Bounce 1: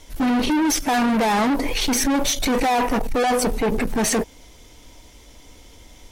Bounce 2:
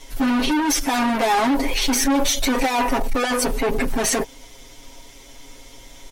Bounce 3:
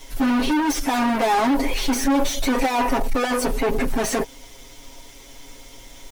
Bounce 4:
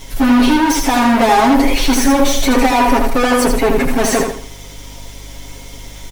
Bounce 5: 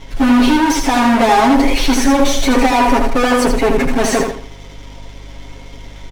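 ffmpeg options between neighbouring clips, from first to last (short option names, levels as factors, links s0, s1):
-filter_complex "[0:a]equalizer=f=93:w=0.33:g=-5.5,aecho=1:1:7.4:0.97,asplit=2[s0][s1];[s1]alimiter=limit=0.106:level=0:latency=1:release=29,volume=1.12[s2];[s0][s2]amix=inputs=2:normalize=0,volume=0.596"
-filter_complex "[0:a]acrossover=split=1300[s0][s1];[s1]asoftclip=type=tanh:threshold=0.0562[s2];[s0][s2]amix=inputs=2:normalize=0,acrusher=bits=7:mix=0:aa=0.5"
-af "aeval=exprs='val(0)+0.00501*(sin(2*PI*50*n/s)+sin(2*PI*2*50*n/s)/2+sin(2*PI*3*50*n/s)/3+sin(2*PI*4*50*n/s)/4+sin(2*PI*5*50*n/s)/5)':c=same,aecho=1:1:81|162|243|324:0.531|0.17|0.0544|0.0174,volume=2.24"
-af "adynamicsmooth=sensitivity=7.5:basefreq=2200"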